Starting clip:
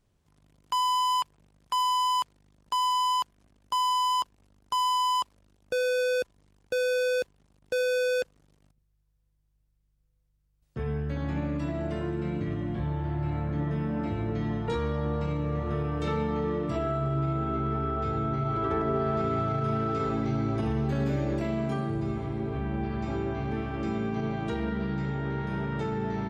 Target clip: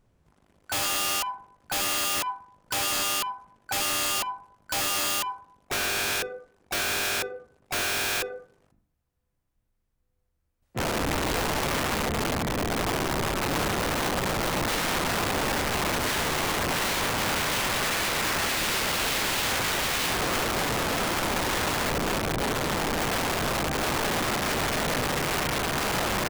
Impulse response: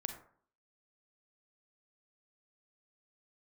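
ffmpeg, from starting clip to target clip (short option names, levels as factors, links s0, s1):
-filter_complex "[0:a]bandreject=f=50:t=h:w=6,bandreject=f=100:t=h:w=6,bandreject=f=150:t=h:w=6,bandreject=f=200:t=h:w=6,bandreject=f=250:t=h:w=6,bandreject=f=300:t=h:w=6,bandreject=f=350:t=h:w=6,bandreject=f=400:t=h:w=6,bandreject=f=450:t=h:w=6,asplit=3[s0][s1][s2];[s1]asetrate=35002,aresample=44100,atempo=1.25992,volume=0.447[s3];[s2]asetrate=66075,aresample=44100,atempo=0.66742,volume=0.178[s4];[s0][s3][s4]amix=inputs=3:normalize=0,asplit=2[s5][s6];[1:a]atrim=start_sample=2205,lowpass=2600,lowshelf=f=68:g=-4.5[s7];[s6][s7]afir=irnorm=-1:irlink=0,volume=1.06[s8];[s5][s8]amix=inputs=2:normalize=0,aeval=exprs='(mod(12.6*val(0)+1,2)-1)/12.6':c=same"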